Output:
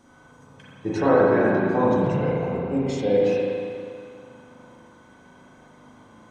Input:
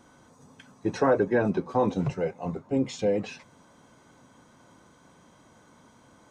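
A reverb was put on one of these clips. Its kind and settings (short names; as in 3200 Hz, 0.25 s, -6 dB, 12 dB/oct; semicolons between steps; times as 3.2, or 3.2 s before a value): spring tank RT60 2.3 s, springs 36/40 ms, chirp 75 ms, DRR -6.5 dB; gain -1.5 dB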